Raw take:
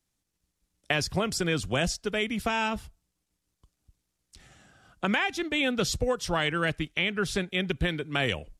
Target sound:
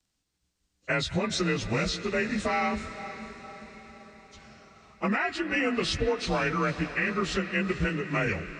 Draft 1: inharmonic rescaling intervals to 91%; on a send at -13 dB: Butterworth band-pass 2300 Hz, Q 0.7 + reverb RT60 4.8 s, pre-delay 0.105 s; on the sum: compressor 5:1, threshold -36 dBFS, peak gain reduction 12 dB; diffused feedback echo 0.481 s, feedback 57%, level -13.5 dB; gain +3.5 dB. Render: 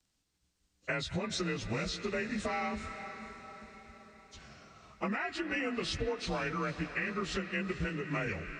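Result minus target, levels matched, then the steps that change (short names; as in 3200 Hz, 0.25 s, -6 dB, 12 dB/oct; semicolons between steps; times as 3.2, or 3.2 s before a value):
compressor: peak gain reduction +8 dB
change: compressor 5:1, threshold -26 dBFS, peak gain reduction 4 dB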